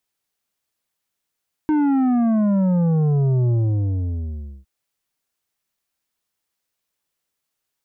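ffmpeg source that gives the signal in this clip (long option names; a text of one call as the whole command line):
ffmpeg -f lavfi -i "aevalsrc='0.158*clip((2.96-t)/1.15,0,1)*tanh(2.66*sin(2*PI*310*2.96/log(65/310)*(exp(log(65/310)*t/2.96)-1)))/tanh(2.66)':duration=2.96:sample_rate=44100" out.wav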